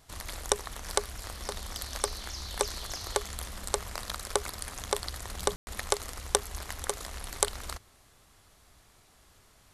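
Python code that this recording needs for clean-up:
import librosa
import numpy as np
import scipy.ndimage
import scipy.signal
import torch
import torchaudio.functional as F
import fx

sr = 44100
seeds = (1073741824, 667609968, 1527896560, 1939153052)

y = fx.fix_ambience(x, sr, seeds[0], print_start_s=8.81, print_end_s=9.31, start_s=5.56, end_s=5.67)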